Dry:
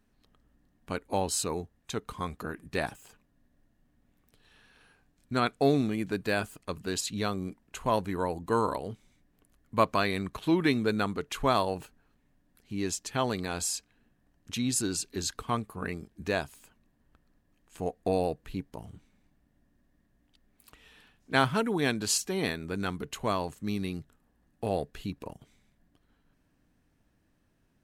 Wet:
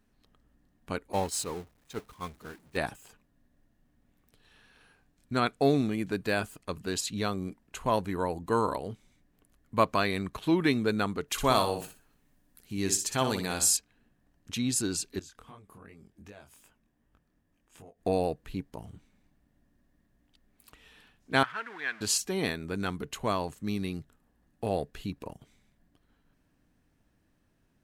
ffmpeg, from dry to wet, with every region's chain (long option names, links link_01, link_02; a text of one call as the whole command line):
ffmpeg -i in.wav -filter_complex "[0:a]asettb=1/sr,asplit=3[link_01][link_02][link_03];[link_01]atrim=end=1.124[link_04];[link_02]atrim=start=1.12:end=2.77,asetpts=PTS-STARTPTS,afade=type=in:duration=0.004:curve=qsin,afade=type=out:start_time=1.646:duration=0.004:curve=qsin,aeval=exprs='val(0)+0.5*0.0237*sgn(val(0))':channel_layout=same,agate=range=-33dB:threshold=-24dB:ratio=3:release=100:detection=peak[link_05];[link_03]atrim=start=2.766[link_06];[link_04][link_05]acrossfade=duration=0.004:curve1=hsin:curve2=qsin[link_07];[link_07][link_06]acrossfade=duration=0.004:curve1=qsin:curve2=hsin,asettb=1/sr,asplit=3[link_08][link_09][link_10];[link_08]atrim=end=11.284[link_11];[link_09]atrim=start=11.28:end=13.77,asetpts=PTS-STARTPTS,afade=type=in:duration=0.004:curve=qsin,afade=type=out:start_time=2.486:duration=0.004:curve=qsin,highshelf=frequency=5500:gain=10.5,aecho=1:1:61|122|183:0.422|0.11|0.0285,atrim=end_sample=109809[link_12];[link_10]atrim=start=13.766[link_13];[link_11][link_12]acrossfade=duration=0.004:curve1=hsin:curve2=qsin[link_14];[link_14][link_13]acrossfade=duration=0.004:curve1=qsin:curve2=hsin,asettb=1/sr,asplit=3[link_15][link_16][link_17];[link_15]atrim=end=15.194[link_18];[link_16]atrim=start=15.19:end=18.01,asetpts=PTS-STARTPTS,afade=type=in:duration=0.004:curve=qsin,afade=type=out:start_time=2.816:duration=0.004:curve=qsin,bandreject=frequency=4200:width=8.8,acompressor=threshold=-46dB:ratio=4:attack=3.2:release=140:knee=1:detection=peak,flanger=delay=19:depth=6.9:speed=2.6[link_19];[link_17]atrim=start=18.006[link_20];[link_18][link_19]acrossfade=duration=0.004:curve1=hsin:curve2=qsin[link_21];[link_21][link_20]acrossfade=duration=0.004:curve1=qsin:curve2=hsin,asettb=1/sr,asplit=3[link_22][link_23][link_24];[link_22]atrim=end=21.434[link_25];[link_23]atrim=start=21.43:end=22.01,asetpts=PTS-STARTPTS,afade=type=in:duration=0.004:curve=qsin,afade=type=out:start_time=0.576:duration=0.004:curve=qsin,aeval=exprs='val(0)+0.5*0.0251*sgn(val(0))':channel_layout=same,bandpass=frequency=1700:width_type=q:width=2.6[link_26];[link_24]atrim=start=22.006[link_27];[link_25][link_26]acrossfade=duration=0.004:curve1=hsin:curve2=qsin[link_28];[link_28][link_27]acrossfade=duration=0.004:curve1=qsin:curve2=hsin" out.wav